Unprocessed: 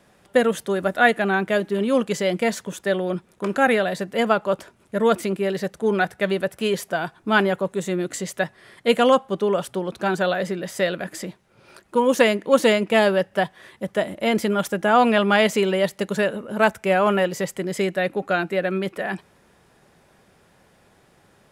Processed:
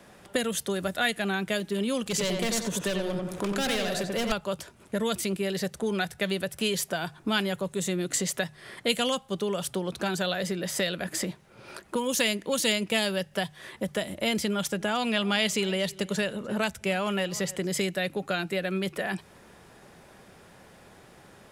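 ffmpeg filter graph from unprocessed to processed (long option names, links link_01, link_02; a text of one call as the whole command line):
ffmpeg -i in.wav -filter_complex "[0:a]asettb=1/sr,asplit=3[link_01][link_02][link_03];[link_01]atrim=end=2.064[link_04];[link_02]atrim=start=2.06:end=4.32,asetpts=PTS-STARTPTS,afade=type=in:duration=0.004:curve=qsin,afade=type=out:start_time=2.256:duration=0.004:curve=qsin,volume=20dB,asoftclip=hard,volume=-20dB,acompressor=mode=upward:threshold=-31dB:ratio=2.5:attack=3.2:release=140:knee=2.83:detection=peak,asplit=2[link_05][link_06];[link_06]adelay=90,lowpass=frequency=2800:poles=1,volume=-3.5dB,asplit=2[link_07][link_08];[link_08]adelay=90,lowpass=frequency=2800:poles=1,volume=0.36,asplit=2[link_09][link_10];[link_10]adelay=90,lowpass=frequency=2800:poles=1,volume=0.36,asplit=2[link_11][link_12];[link_12]adelay=90,lowpass=frequency=2800:poles=1,volume=0.36,asplit=2[link_13][link_14];[link_14]adelay=90,lowpass=frequency=2800:poles=1,volume=0.36[link_15];[link_05][link_07][link_09][link_11][link_13][link_15]amix=inputs=6:normalize=0,atrim=end_sample=99666[link_16];[link_03]atrim=start=4.316[link_17];[link_04][link_16]acrossfade=duration=0.004:curve1=hsin:curve2=qsin[link_18];[link_18][link_17]acrossfade=duration=0.004:curve1=qsin:curve2=hsin,asettb=1/sr,asplit=3[link_19][link_20][link_21];[link_19]atrim=end=14.384[link_22];[link_20]atrim=start=14.38:end=17.67,asetpts=PTS-STARTPTS,afade=type=in:duration=0.004:curve=qsin,afade=type=out:start_time=3.286:duration=0.004:curve=qsin,highshelf=frequency=11000:gain=-10.5,aecho=1:1:299:0.0668,atrim=end_sample=145089[link_23];[link_21]atrim=start=17.666[link_24];[link_22][link_23]acrossfade=duration=0.004:curve1=hsin:curve2=qsin[link_25];[link_25][link_24]acrossfade=duration=0.004:curve1=qsin:curve2=hsin,bandreject=frequency=50:width_type=h:width=6,bandreject=frequency=100:width_type=h:width=6,bandreject=frequency=150:width_type=h:width=6,acrossover=split=130|3000[link_26][link_27][link_28];[link_27]acompressor=threshold=-34dB:ratio=5[link_29];[link_26][link_29][link_28]amix=inputs=3:normalize=0,volume=4.5dB" out.wav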